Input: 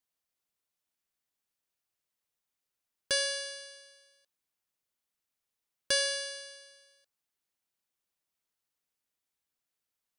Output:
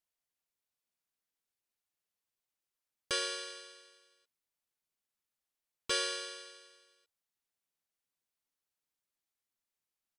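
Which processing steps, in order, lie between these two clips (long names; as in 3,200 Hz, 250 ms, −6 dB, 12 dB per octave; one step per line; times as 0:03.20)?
noise that follows the level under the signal 35 dB
pitch-shifted copies added −7 semitones −3 dB, −3 semitones −1 dB
level −8 dB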